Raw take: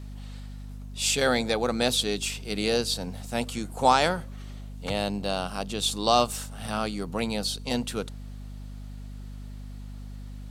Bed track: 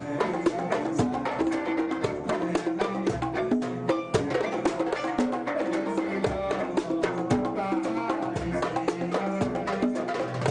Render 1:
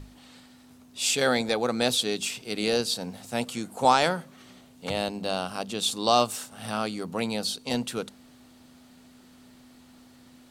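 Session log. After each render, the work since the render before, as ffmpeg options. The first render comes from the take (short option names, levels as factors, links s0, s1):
-af "bandreject=f=50:t=h:w=6,bandreject=f=100:t=h:w=6,bandreject=f=150:t=h:w=6,bandreject=f=200:t=h:w=6"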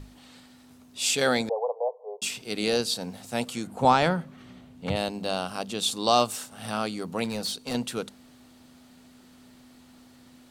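-filter_complex "[0:a]asettb=1/sr,asplit=3[s0][s1][s2];[s0]atrim=end=1.494[s3];[s1]atrim=start=1.49:end=2.22,asetpts=PTS-STARTPTS,afade=t=in:d=0.004:c=qsin,afade=t=out:st=0.726:d=0.004:c=qsin,asuperpass=centerf=670:order=20:qfactor=1.1[s4];[s2]atrim=start=2.216[s5];[s3][s4]acrossfade=d=0.004:c1=hsin:c2=qsin[s6];[s6][s5]acrossfade=d=0.004:c1=qsin:c2=hsin,asettb=1/sr,asplit=3[s7][s8][s9];[s7]atrim=end=3.674[s10];[s8]atrim=start=3.67:end=4.96,asetpts=PTS-STARTPTS,afade=t=in:d=0.004:c=qsin,afade=t=out:st=1.286:d=0.004:c=qsin,bass=f=250:g=8,treble=f=4000:g=-9[s11];[s9]atrim=start=4.956[s12];[s10][s11]acrossfade=d=0.004:c1=hsin:c2=qsin[s13];[s13][s12]acrossfade=d=0.004:c1=qsin:c2=hsin,asettb=1/sr,asplit=3[s14][s15][s16];[s14]atrim=end=7.244[s17];[s15]atrim=start=7.24:end=7.75,asetpts=PTS-STARTPTS,afade=t=in:d=0.004:c=qsin,afade=t=out:st=0.506:d=0.004:c=qsin,volume=20,asoftclip=hard,volume=0.0501[s18];[s16]atrim=start=7.746[s19];[s17][s18]acrossfade=d=0.004:c1=hsin:c2=qsin[s20];[s20][s19]acrossfade=d=0.004:c1=qsin:c2=hsin"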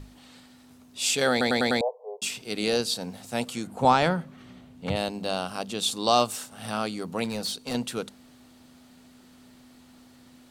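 -filter_complex "[0:a]asplit=6[s0][s1][s2][s3][s4][s5];[s0]atrim=end=1.412[s6];[s1]atrim=start=1.308:end=1.412[s7];[s2]atrim=start=1.308:end=1.412[s8];[s3]atrim=start=1.308:end=1.412[s9];[s4]atrim=start=1.308:end=1.412[s10];[s5]atrim=start=1.808[s11];[s6][s7]acrossfade=d=0.004:c1=hsin:c2=hsin[s12];[s12][s8]acrossfade=d=0.004:c1=hsin:c2=hsin[s13];[s13][s9]acrossfade=d=0.004:c1=hsin:c2=hsin[s14];[s14][s10]acrossfade=d=0.004:c1=hsin:c2=hsin[s15];[s15][s11]acrossfade=d=0.004:c1=hsin:c2=hsin"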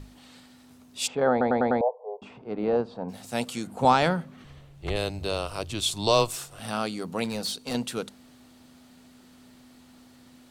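-filter_complex "[0:a]asplit=3[s0][s1][s2];[s0]afade=t=out:st=1.06:d=0.02[s3];[s1]lowpass=f=950:t=q:w=1.7,afade=t=in:st=1.06:d=0.02,afade=t=out:st=3.08:d=0.02[s4];[s2]afade=t=in:st=3.08:d=0.02[s5];[s3][s4][s5]amix=inputs=3:normalize=0,asettb=1/sr,asplit=3[s6][s7][s8];[s6]atrim=end=4.444[s9];[s7]atrim=start=4.44:end=6.6,asetpts=PTS-STARTPTS,afade=t=in:d=0.004:c=qsin,afade=t=out:st=2.156:d=0.004:c=qsin,afreqshift=-110[s10];[s8]atrim=start=6.596[s11];[s9][s10]acrossfade=d=0.004:c1=hsin:c2=qsin[s12];[s12][s11]acrossfade=d=0.004:c1=qsin:c2=hsin"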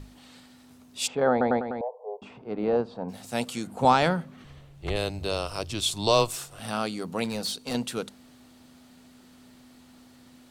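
-filter_complex "[0:a]asettb=1/sr,asplit=3[s0][s1][s2];[s0]atrim=end=1.594[s3];[s1]atrim=start=1.59:end=2.02,asetpts=PTS-STARTPTS,afade=t=in:d=0.004:c=qsin,afade=t=out:st=0.426:d=0.004:c=qsin,acompressor=threshold=0.0355:ratio=4:attack=3.2:release=140:knee=1:detection=peak[s4];[s2]atrim=start=2.016[s5];[s3][s4]acrossfade=d=0.004:c1=hsin:c2=qsin[s6];[s6][s5]acrossfade=d=0.004:c1=qsin:c2=hsin,asettb=1/sr,asplit=3[s7][s8][s9];[s7]atrim=end=5.314[s10];[s8]atrim=start=5.31:end=5.81,asetpts=PTS-STARTPTS,afade=t=in:d=0.004:c=qsin,afade=t=out:st=0.496:d=0.004:c=qsin,equalizer=f=5300:w=7.5:g=10[s11];[s9]atrim=start=5.806[s12];[s10][s11]acrossfade=d=0.004:c1=hsin:c2=qsin[s13];[s13][s12]acrossfade=d=0.004:c1=qsin:c2=hsin"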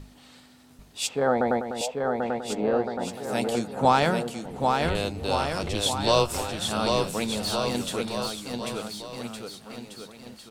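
-filter_complex "[0:a]asplit=2[s0][s1];[s1]adelay=14,volume=0.224[s2];[s0][s2]amix=inputs=2:normalize=0,aecho=1:1:790|1462|2032|2517|2930:0.631|0.398|0.251|0.158|0.1"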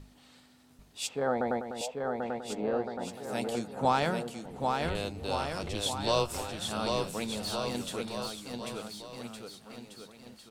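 -af "volume=0.473"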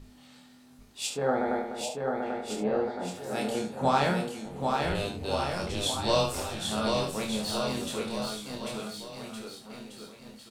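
-filter_complex "[0:a]asplit=2[s0][s1];[s1]adelay=23,volume=0.531[s2];[s0][s2]amix=inputs=2:normalize=0,aecho=1:1:28|72:0.562|0.398"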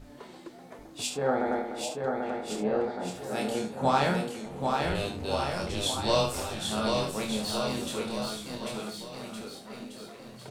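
-filter_complex "[1:a]volume=0.0891[s0];[0:a][s0]amix=inputs=2:normalize=0"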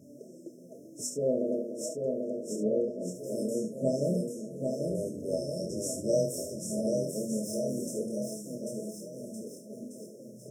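-af "afftfilt=real='re*(1-between(b*sr/4096,670,5200))':imag='im*(1-between(b*sr/4096,670,5200))':win_size=4096:overlap=0.75,highpass=f=130:w=0.5412,highpass=f=130:w=1.3066"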